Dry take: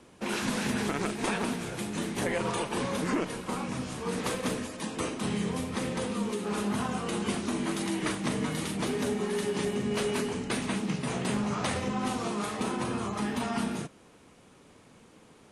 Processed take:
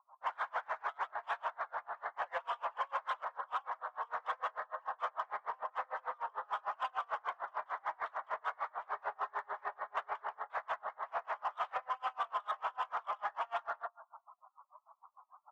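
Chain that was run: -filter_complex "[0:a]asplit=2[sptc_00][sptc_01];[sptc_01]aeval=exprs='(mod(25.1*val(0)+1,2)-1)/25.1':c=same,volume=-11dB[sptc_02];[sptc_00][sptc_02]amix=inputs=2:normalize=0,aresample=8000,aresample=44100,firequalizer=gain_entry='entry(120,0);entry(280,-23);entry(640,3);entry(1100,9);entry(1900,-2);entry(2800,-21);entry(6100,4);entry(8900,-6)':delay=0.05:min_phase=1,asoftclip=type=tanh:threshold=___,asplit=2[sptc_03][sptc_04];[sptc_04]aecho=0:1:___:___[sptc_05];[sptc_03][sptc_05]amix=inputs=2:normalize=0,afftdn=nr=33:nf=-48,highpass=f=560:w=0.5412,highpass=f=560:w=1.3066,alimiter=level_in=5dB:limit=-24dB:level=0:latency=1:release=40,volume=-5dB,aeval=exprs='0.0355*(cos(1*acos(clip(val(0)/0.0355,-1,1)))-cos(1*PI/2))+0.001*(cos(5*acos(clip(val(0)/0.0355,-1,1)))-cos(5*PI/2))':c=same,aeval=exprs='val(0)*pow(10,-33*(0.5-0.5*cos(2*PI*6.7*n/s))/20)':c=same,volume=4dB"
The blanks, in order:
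-30.5dB, 386, 0.119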